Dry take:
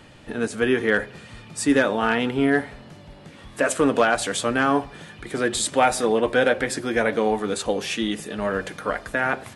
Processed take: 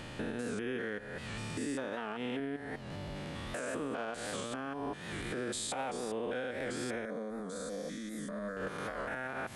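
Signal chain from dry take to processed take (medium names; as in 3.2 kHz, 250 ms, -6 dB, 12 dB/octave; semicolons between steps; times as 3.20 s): spectrogram pixelated in time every 200 ms; 1.93–2.40 s: high-pass 180 Hz 6 dB/octave; compression 5:1, threshold -39 dBFS, peak gain reduction 20 dB; peak limiter -32.5 dBFS, peak gain reduction 7 dB; 7.05–8.57 s: static phaser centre 560 Hz, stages 8; warped record 78 rpm, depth 100 cents; trim +4.5 dB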